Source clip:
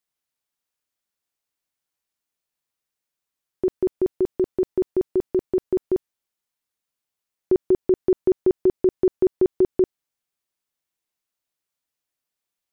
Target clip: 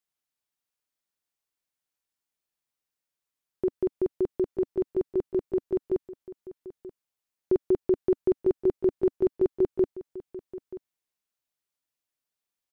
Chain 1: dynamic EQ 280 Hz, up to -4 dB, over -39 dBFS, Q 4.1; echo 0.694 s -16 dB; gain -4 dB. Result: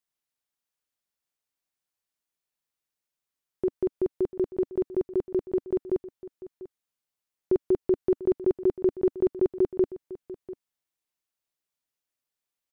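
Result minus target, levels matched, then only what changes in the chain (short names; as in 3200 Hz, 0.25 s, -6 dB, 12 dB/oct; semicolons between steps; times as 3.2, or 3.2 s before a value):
echo 0.238 s early
change: echo 0.932 s -16 dB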